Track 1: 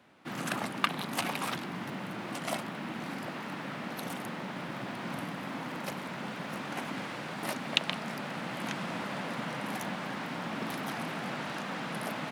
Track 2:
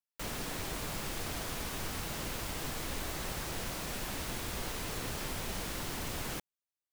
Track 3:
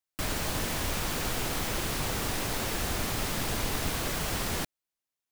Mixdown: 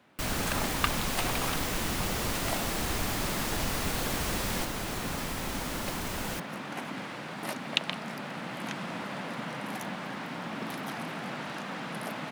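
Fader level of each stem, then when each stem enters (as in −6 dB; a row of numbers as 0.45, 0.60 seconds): −0.5, +2.0, −2.5 decibels; 0.00, 0.00, 0.00 seconds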